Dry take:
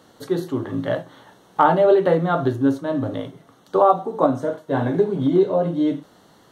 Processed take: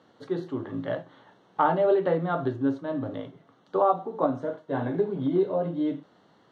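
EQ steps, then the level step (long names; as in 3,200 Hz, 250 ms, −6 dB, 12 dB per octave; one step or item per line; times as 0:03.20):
high-pass filter 99 Hz
low-pass filter 3,700 Hz 12 dB per octave
−7.0 dB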